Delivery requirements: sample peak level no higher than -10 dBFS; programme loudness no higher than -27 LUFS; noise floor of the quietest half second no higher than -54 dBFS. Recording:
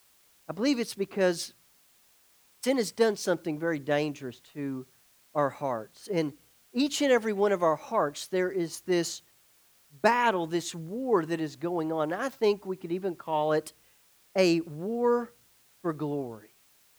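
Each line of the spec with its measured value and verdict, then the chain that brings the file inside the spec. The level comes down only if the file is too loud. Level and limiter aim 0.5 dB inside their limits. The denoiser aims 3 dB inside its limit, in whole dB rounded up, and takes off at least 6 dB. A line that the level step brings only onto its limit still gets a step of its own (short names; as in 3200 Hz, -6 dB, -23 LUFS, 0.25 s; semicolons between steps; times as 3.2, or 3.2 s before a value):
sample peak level -6.5 dBFS: fail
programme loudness -29.0 LUFS: OK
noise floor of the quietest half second -63 dBFS: OK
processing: limiter -10.5 dBFS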